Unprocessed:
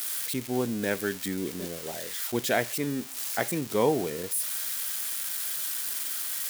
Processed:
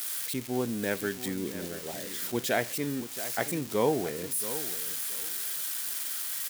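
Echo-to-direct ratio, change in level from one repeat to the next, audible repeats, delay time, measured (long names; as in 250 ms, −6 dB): −13.0 dB, −13.5 dB, 2, 676 ms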